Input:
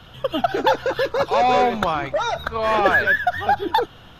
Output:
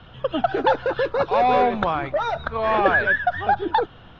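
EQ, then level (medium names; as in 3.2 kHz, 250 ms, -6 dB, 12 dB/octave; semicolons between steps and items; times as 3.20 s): distance through air 240 m; 0.0 dB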